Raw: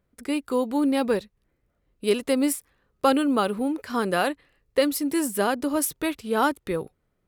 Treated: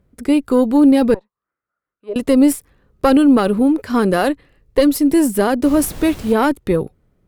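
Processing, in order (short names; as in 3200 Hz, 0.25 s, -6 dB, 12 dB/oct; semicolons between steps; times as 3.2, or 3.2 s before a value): 1.14–2.16 auto-wah 620–1400 Hz, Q 6.6, down, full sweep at -19.5 dBFS; 5.62–6.32 added noise pink -43 dBFS; added harmonics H 2 -11 dB, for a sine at -8 dBFS; in parallel at 0 dB: limiter -16 dBFS, peak gain reduction 10.5 dB; on the sum: low shelf 500 Hz +10.5 dB; gain -1.5 dB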